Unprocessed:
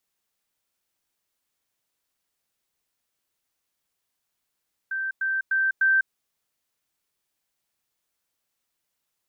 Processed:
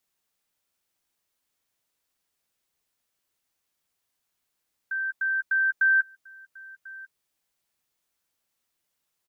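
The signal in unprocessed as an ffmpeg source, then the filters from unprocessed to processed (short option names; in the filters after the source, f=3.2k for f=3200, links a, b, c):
-f lavfi -i "aevalsrc='pow(10,(-25.5+3*floor(t/0.3))/20)*sin(2*PI*1560*t)*clip(min(mod(t,0.3),0.2-mod(t,0.3))/0.005,0,1)':d=1.2:s=44100"
-filter_complex "[0:a]asplit=2[a][b];[b]adelay=12,volume=-13dB[c];[a][c]amix=inputs=2:normalize=0,aecho=1:1:1043:0.0841"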